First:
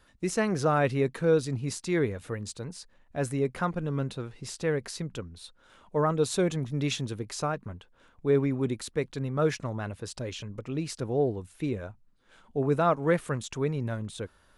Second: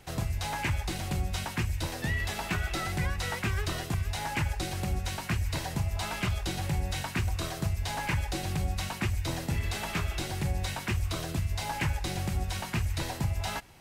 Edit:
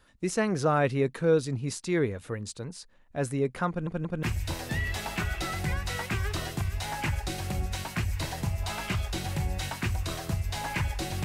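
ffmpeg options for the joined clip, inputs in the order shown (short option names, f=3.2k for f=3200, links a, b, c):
-filter_complex "[0:a]apad=whole_dur=11.24,atrim=end=11.24,asplit=3[a][b][c];[a]atrim=end=3.872[d];[b]atrim=start=3.688:end=3.872[e];[c]atrim=start=3.688:end=3.872[f];[1:a]atrim=start=1.558:end=8.57[g];[d][e]acrossfade=d=0.004:c1=hsin:c2=hsin[h];[h][f]acrossfade=d=0.004:c1=hsin:c2=hsin[i];[i][g]acrossfade=d=0.004:c1=hsin:c2=hsin"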